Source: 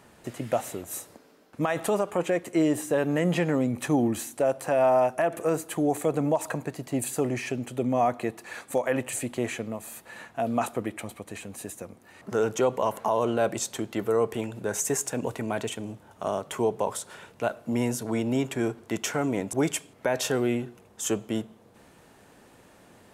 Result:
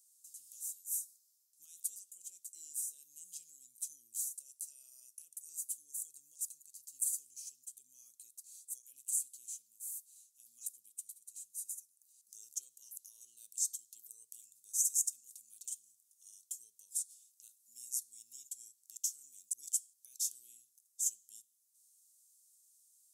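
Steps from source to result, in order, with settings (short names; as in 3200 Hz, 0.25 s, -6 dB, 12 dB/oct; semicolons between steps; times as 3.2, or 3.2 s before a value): inverse Chebyshev high-pass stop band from 2000 Hz, stop band 60 dB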